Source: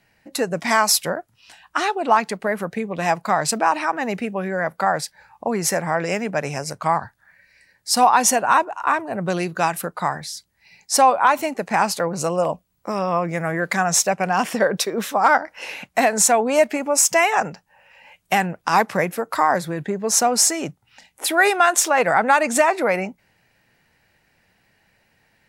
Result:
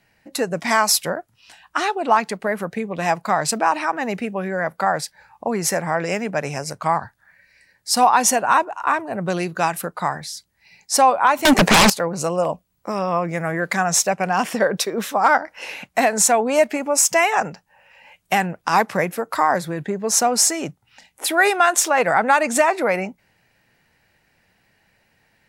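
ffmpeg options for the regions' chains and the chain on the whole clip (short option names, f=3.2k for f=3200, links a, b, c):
-filter_complex "[0:a]asettb=1/sr,asplit=3[a][b][c];[a]atrim=end=11.454[d];[b]atrim=start=11.45:end=11.9,asetpts=PTS-STARTPTS,afade=t=in:d=0.004:c=qsin,afade=t=out:st=0.446:d=0.004:c=qsin,acompressor=threshold=-21dB:ratio=2:attack=3.2:release=140:knee=1:detection=peak,aeval=exprs='0.376*sin(PI/2*7.94*val(0)/0.376)':c=same[e];[c]atrim=start=11.896[f];[d][e]acrossfade=d=0.004:c1=hsin:c2=qsin[g];[g][f]acrossfade=d=0.004:c1=qsin:c2=hsin"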